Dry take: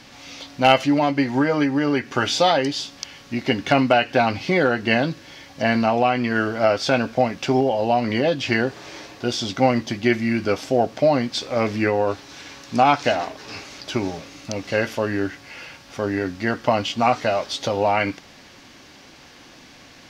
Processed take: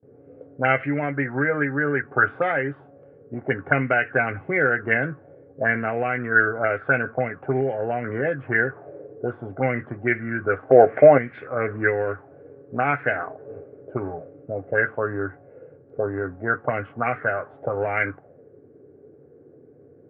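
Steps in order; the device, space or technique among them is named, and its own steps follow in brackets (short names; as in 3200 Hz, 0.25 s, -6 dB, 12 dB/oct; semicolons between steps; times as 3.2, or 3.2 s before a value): 10.69–11.18 bell 670 Hz +13 dB 2.7 oct; envelope filter bass rig (envelope low-pass 400–2100 Hz up, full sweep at -15 dBFS; speaker cabinet 81–2200 Hz, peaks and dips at 95 Hz +8 dB, 140 Hz +9 dB, 200 Hz -6 dB, 440 Hz +9 dB, 940 Hz -9 dB, 1500 Hz +8 dB); gate with hold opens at -36 dBFS; gain -8 dB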